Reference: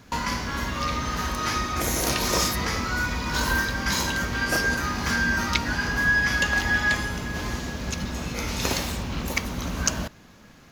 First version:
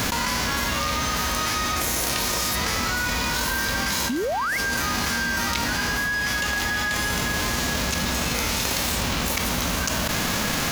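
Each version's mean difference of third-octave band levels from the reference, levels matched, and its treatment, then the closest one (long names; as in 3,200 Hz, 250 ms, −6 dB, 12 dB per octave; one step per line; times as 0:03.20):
6.5 dB: spectral envelope flattened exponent 0.6
parametric band 370 Hz −2 dB
sound drawn into the spectrogram rise, 0:04.09–0:04.58, 220–2,300 Hz −17 dBFS
envelope flattener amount 100%
level −9 dB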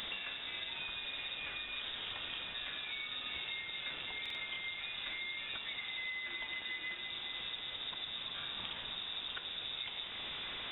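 15.0 dB: linear delta modulator 32 kbit/s, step −27.5 dBFS
downward compressor, threshold −31 dBFS, peak gain reduction 13 dB
voice inversion scrambler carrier 3,700 Hz
buffer that repeats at 0:04.21, samples 2,048, times 2
level −8.5 dB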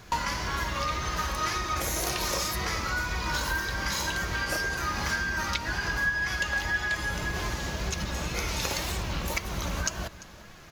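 3.0 dB: parametric band 260 Hz −13.5 dB 0.37 octaves
downward compressor 5 to 1, threshold −30 dBFS, peak gain reduction 12.5 dB
flanger 1.9 Hz, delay 2.6 ms, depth 1.1 ms, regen +58%
on a send: single-tap delay 344 ms −19 dB
on the sum: level +7.5 dB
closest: third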